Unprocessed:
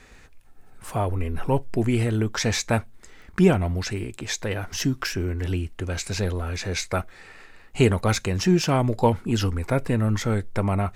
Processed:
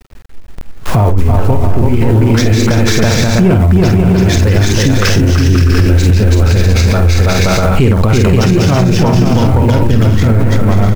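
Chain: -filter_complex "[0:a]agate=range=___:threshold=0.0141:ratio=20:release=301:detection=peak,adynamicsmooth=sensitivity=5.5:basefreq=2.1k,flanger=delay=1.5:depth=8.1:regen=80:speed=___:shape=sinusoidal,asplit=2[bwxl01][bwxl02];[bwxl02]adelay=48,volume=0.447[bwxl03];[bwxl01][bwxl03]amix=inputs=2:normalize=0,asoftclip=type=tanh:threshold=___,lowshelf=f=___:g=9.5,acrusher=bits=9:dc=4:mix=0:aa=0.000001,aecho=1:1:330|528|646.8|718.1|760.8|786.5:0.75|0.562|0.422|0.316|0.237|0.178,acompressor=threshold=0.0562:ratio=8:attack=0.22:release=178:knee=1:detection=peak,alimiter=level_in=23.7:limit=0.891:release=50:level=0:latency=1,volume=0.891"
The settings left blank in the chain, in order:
0.178, 0.39, 0.178, 220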